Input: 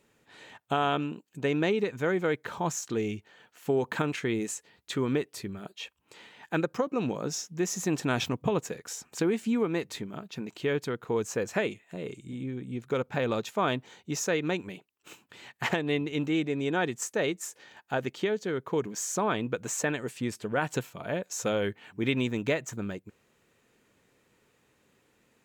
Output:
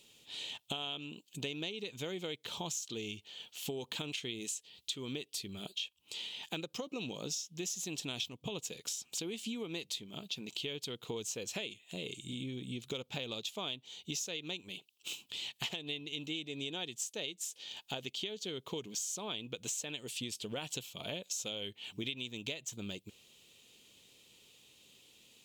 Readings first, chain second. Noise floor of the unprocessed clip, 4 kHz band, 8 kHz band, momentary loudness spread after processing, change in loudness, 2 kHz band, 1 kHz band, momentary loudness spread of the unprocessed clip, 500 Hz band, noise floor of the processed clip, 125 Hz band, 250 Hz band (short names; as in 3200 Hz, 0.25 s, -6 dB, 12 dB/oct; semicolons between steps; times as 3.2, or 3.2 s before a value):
-69 dBFS, +2.5 dB, -2.5 dB, 9 LU, -9.0 dB, -11.0 dB, -16.0 dB, 11 LU, -14.5 dB, -72 dBFS, -12.0 dB, -13.0 dB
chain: resonant high shelf 2300 Hz +11.5 dB, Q 3; compressor 6:1, threshold -35 dBFS, peak gain reduction 20.5 dB; gain -2.5 dB